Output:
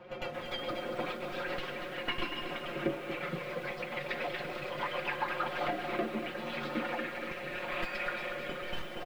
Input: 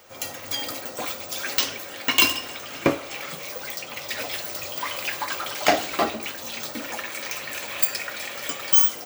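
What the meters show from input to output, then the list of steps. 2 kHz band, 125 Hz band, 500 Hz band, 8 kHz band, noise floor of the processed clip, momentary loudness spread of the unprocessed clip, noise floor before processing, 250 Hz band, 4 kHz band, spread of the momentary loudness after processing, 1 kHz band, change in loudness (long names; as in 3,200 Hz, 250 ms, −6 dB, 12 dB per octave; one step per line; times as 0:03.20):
−7.5 dB, −3.0 dB, −5.0 dB, −29.0 dB, −42 dBFS, 13 LU, −38 dBFS, −6.0 dB, −14.0 dB, 4 LU, −7.0 dB, −11.5 dB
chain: stylus tracing distortion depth 0.047 ms
high-shelf EQ 10,000 Hz −7 dB
comb filter 5.6 ms, depth 100%
downward compressor 4 to 1, threshold −24 dBFS, peak gain reduction 11.5 dB
hard clipping −20 dBFS, distortion −16 dB
rotating-speaker cabinet horn 7 Hz, later 0.8 Hz, at 0:05.21
high-frequency loss of the air 460 metres
on a send: backwards echo 103 ms −10.5 dB
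on the sum: feedback echo at a low word length 236 ms, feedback 55%, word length 9 bits, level −8 dB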